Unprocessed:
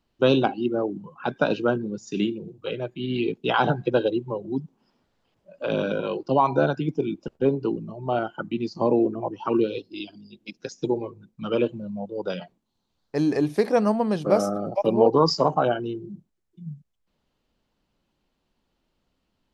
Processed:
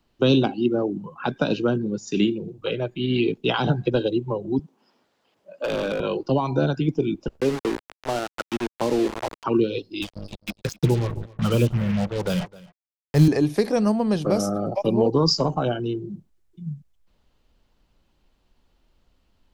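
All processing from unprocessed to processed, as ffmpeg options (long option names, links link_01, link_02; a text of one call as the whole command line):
ffmpeg -i in.wav -filter_complex "[0:a]asettb=1/sr,asplit=3[link_01][link_02][link_03];[link_01]atrim=end=4.594[link_04];[link_02]atrim=start=4.59:end=6,asetpts=PTS-STARTPTS,afade=type=in:duration=0.004:curve=qsin,afade=type=out:start_time=1.406:duration=0.004:curve=qsin,highpass=250,asoftclip=type=hard:threshold=-23dB[link_05];[link_03]atrim=start=5.996[link_06];[link_04][link_05]acrossfade=duration=0.004:curve1=hsin:curve2=qsin[link_07];[link_07][link_06]acrossfade=duration=0.004:curve1=qsin:curve2=hsin,asettb=1/sr,asplit=3[link_08][link_09][link_10];[link_08]atrim=end=7.404[link_11];[link_09]atrim=start=7.4:end=9.44,asetpts=PTS-STARTPTS,afade=type=in:duration=0.004:curve=qsin,afade=type=out:start_time=2.036:duration=0.004:curve=qsin,aeval=exprs='val(0)*gte(abs(val(0)),0.0398)':channel_layout=same,lowshelf=frequency=190:gain=-11,adynamicsmooth=sensitivity=7:basefreq=2200[link_12];[link_10]atrim=start=9.436[link_13];[link_11][link_12]acrossfade=duration=0.004:curve1=hsin:curve2=qsin[link_14];[link_14][link_13]acrossfade=duration=0.004:curve1=qsin:curve2=hsin,asettb=1/sr,asplit=3[link_15][link_16][link_17];[link_15]atrim=end=10.024[link_18];[link_16]atrim=start=10.02:end=13.28,asetpts=PTS-STARTPTS,afade=type=in:duration=0.004:curve=qsin,afade=type=out:start_time=3.256:duration=0.004:curve=qsin,lowshelf=frequency=210:width_type=q:width=1.5:gain=9.5,acrusher=bits=5:mix=0:aa=0.5,aecho=1:1:260:0.075,atrim=end_sample=143766[link_19];[link_17]atrim=start=13.276[link_20];[link_18][link_19]acrossfade=duration=0.004:curve1=hsin:curve2=qsin[link_21];[link_21][link_20]acrossfade=duration=0.004:curve1=qsin:curve2=hsin,asubboost=boost=2.5:cutoff=93,acrossover=split=340|3000[link_22][link_23][link_24];[link_23]acompressor=threshold=-30dB:ratio=6[link_25];[link_22][link_25][link_24]amix=inputs=3:normalize=0,volume=5.5dB" out.wav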